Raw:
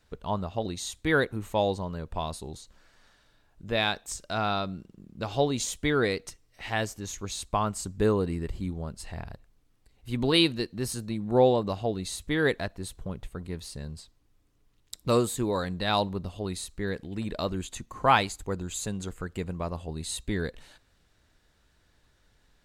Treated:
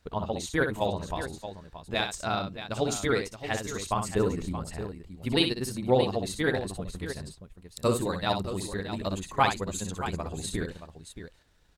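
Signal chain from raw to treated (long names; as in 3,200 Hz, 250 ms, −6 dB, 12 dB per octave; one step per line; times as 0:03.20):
time stretch by overlap-add 0.52×, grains 69 ms
on a send: multi-tap delay 61/625 ms −7/−11 dB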